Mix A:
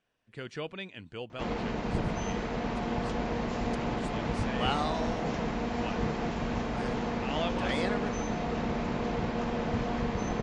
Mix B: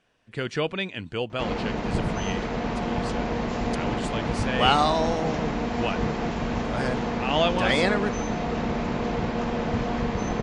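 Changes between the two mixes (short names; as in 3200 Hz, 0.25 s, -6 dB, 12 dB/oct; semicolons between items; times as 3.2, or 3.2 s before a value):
speech +11.0 dB; background +4.5 dB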